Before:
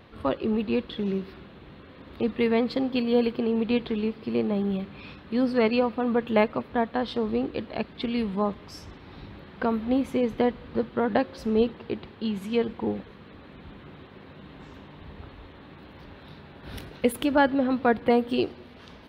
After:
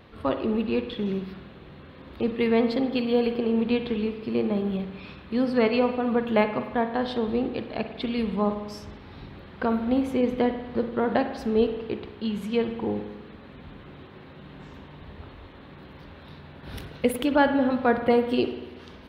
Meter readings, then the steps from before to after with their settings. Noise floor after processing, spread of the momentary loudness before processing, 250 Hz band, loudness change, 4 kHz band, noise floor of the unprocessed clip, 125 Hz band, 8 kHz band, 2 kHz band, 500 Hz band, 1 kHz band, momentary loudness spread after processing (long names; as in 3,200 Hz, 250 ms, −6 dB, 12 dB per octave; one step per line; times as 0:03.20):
−46 dBFS, 22 LU, +0.5 dB, +0.5 dB, +0.5 dB, −48 dBFS, +1.0 dB, can't be measured, +0.5 dB, +1.0 dB, +0.5 dB, 22 LU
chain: spring reverb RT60 1.1 s, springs 48 ms, chirp 25 ms, DRR 7.5 dB